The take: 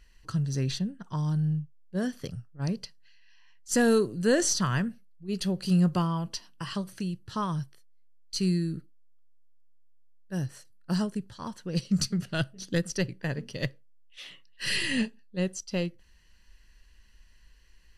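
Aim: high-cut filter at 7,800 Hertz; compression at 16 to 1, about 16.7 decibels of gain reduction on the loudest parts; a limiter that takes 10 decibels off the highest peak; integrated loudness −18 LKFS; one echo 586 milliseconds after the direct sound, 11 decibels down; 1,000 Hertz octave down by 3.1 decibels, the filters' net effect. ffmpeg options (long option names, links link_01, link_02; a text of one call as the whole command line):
ffmpeg -i in.wav -af "lowpass=7800,equalizer=frequency=1000:width_type=o:gain=-4,acompressor=threshold=-36dB:ratio=16,alimiter=level_in=10.5dB:limit=-24dB:level=0:latency=1,volume=-10.5dB,aecho=1:1:586:0.282,volume=26dB" out.wav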